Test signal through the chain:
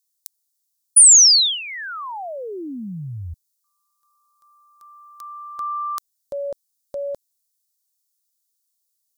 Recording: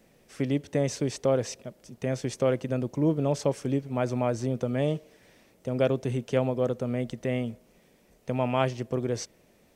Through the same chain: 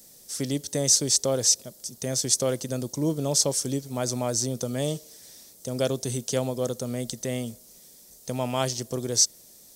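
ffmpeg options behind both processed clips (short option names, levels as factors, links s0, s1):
-af "aexciter=amount=12.5:drive=2.5:freq=3800,volume=0.841"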